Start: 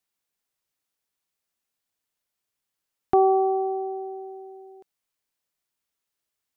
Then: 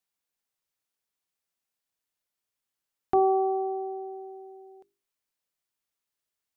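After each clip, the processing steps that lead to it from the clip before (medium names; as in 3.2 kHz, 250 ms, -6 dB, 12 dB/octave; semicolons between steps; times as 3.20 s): hum notches 50/100/150/200/250/300/350/400 Hz; trim -3.5 dB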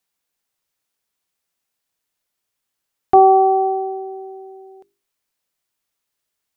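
dynamic bell 790 Hz, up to +6 dB, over -36 dBFS, Q 1.1; trim +8 dB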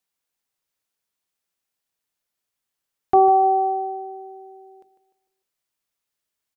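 feedback delay 150 ms, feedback 42%, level -12.5 dB; trim -4.5 dB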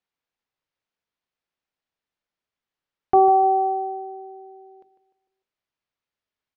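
distance through air 180 m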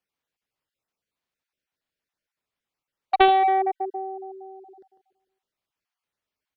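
random holes in the spectrogram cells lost 21%; Chebyshev shaper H 3 -9 dB, 5 -15 dB, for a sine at -7.5 dBFS; trim +3.5 dB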